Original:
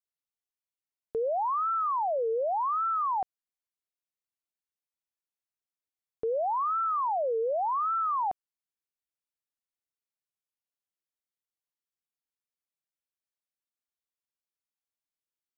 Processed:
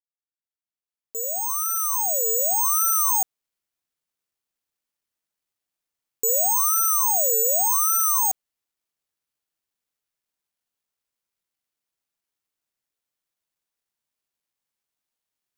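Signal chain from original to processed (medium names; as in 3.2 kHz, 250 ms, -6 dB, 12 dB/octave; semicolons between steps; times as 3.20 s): fade-in on the opening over 2.83 s; careless resampling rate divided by 6×, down none, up zero stuff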